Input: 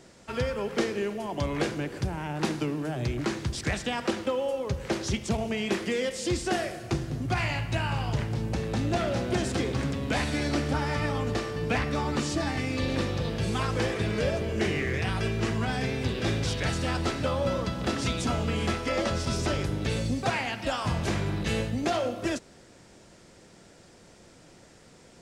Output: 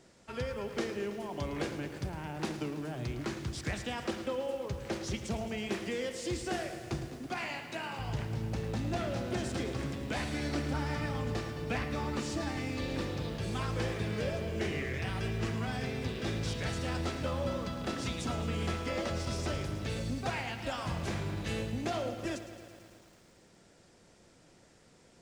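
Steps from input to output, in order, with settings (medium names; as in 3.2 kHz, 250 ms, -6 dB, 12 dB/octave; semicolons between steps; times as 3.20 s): 7.08–7.99 s: high-pass 210 Hz 24 dB/octave; bit-crushed delay 109 ms, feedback 80%, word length 8-bit, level -12.5 dB; trim -7.5 dB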